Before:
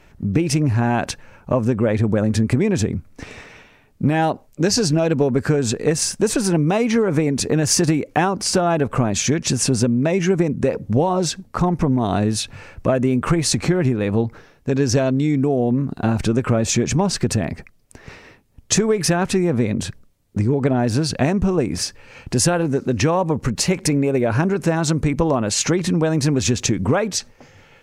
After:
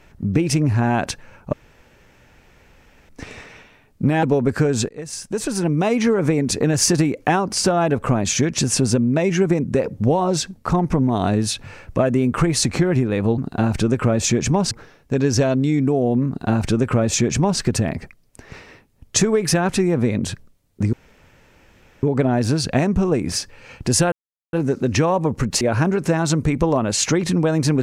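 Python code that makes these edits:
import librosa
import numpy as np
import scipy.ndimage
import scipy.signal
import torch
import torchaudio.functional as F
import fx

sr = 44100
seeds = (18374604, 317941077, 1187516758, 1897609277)

y = fx.edit(x, sr, fx.room_tone_fill(start_s=1.53, length_s=1.56),
    fx.cut(start_s=4.23, length_s=0.89),
    fx.fade_in_from(start_s=5.78, length_s=1.05, floor_db=-20.5),
    fx.duplicate(start_s=15.83, length_s=1.33, to_s=14.27),
    fx.insert_room_tone(at_s=20.49, length_s=1.1),
    fx.insert_silence(at_s=22.58, length_s=0.41),
    fx.cut(start_s=23.66, length_s=0.53), tone=tone)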